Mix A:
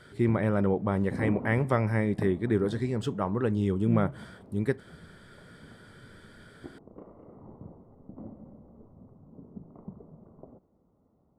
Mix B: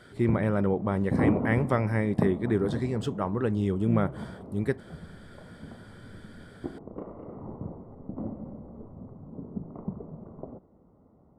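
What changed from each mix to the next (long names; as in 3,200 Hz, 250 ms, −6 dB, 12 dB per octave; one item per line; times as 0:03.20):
background +8.5 dB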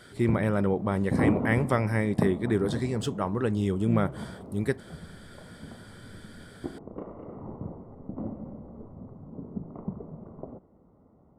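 master: add high-shelf EQ 3,400 Hz +9 dB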